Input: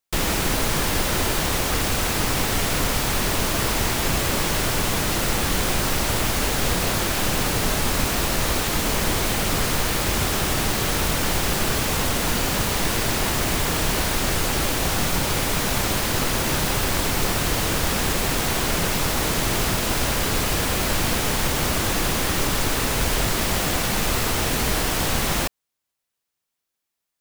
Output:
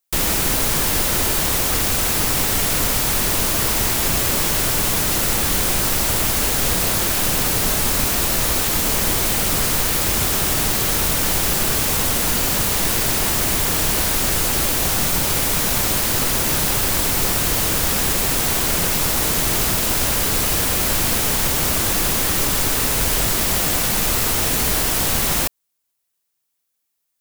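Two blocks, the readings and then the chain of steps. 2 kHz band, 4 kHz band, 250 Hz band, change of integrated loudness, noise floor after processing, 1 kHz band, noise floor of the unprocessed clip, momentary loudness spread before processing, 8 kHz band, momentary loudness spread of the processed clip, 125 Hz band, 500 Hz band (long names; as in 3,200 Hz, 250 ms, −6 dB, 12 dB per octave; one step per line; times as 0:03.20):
+1.0 dB, +2.5 dB, 0.0 dB, +5.0 dB, −74 dBFS, 0.0 dB, −82 dBFS, 0 LU, +6.0 dB, 0 LU, 0.0 dB, 0.0 dB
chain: high-shelf EQ 6,700 Hz +10 dB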